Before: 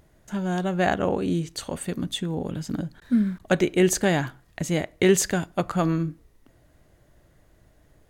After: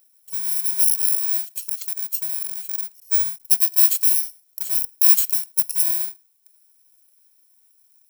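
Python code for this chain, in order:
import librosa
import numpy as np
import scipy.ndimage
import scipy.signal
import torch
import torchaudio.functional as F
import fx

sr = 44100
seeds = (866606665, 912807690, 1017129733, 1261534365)

y = fx.bit_reversed(x, sr, seeds[0], block=64)
y = np.diff(y, prepend=0.0)
y = F.gain(torch.from_numpy(y), 1.5).numpy()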